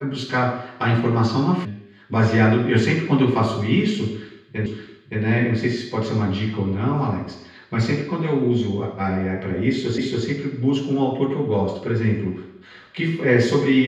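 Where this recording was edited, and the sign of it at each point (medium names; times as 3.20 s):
1.65 s: sound stops dead
4.66 s: repeat of the last 0.57 s
9.98 s: repeat of the last 0.28 s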